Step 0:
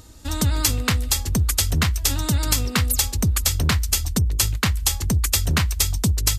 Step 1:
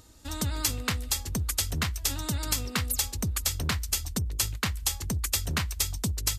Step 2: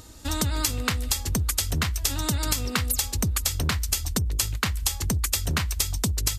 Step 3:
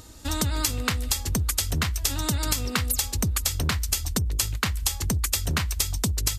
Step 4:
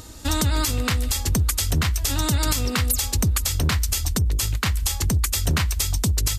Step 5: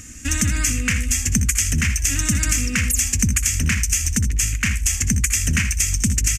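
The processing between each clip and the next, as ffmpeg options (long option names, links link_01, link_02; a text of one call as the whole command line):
ffmpeg -i in.wav -af "lowshelf=frequency=210:gain=-4,volume=-7dB" out.wav
ffmpeg -i in.wav -af "acompressor=threshold=-30dB:ratio=6,volume=8.5dB" out.wav
ffmpeg -i in.wav -af anull out.wav
ffmpeg -i in.wav -af "alimiter=limit=-15.5dB:level=0:latency=1:release=42,volume=5.5dB" out.wav
ffmpeg -i in.wav -filter_complex "[0:a]firequalizer=gain_entry='entry(150,0);entry(230,7);entry(350,-9);entry(590,-12);entry(860,-17);entry(1700,6);entry(2500,9);entry(3900,-14);entry(6200,10);entry(12000,-4)':delay=0.05:min_phase=1,asplit=2[link_01][link_02];[link_02]aecho=0:1:63|79:0.237|0.266[link_03];[link_01][link_03]amix=inputs=2:normalize=0" out.wav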